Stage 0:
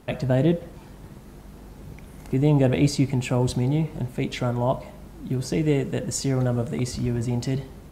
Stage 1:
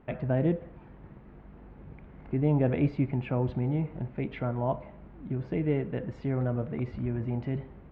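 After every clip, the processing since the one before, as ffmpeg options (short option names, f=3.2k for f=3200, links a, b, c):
-af "lowpass=f=2.4k:w=0.5412,lowpass=f=2.4k:w=1.3066,volume=-6dB"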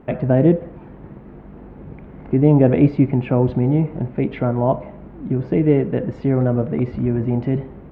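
-af "equalizer=f=330:w=0.42:g=7,volume=6.5dB"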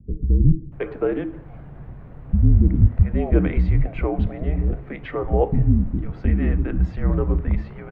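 -filter_complex "[0:a]afreqshift=-190,acrossover=split=280[a][b];[b]adelay=720[c];[a][c]amix=inputs=2:normalize=0"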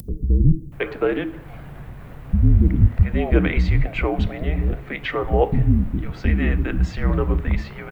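-af "acompressor=mode=upward:threshold=-32dB:ratio=2.5,crystalizer=i=9:c=0"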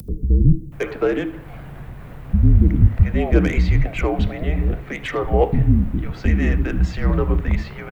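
-filter_complex "[0:a]acrossover=split=170|780[a][b][c];[c]asoftclip=type=tanh:threshold=-23.5dB[d];[a][b][d]amix=inputs=3:normalize=0,aecho=1:1:78:0.0841,volume=1.5dB"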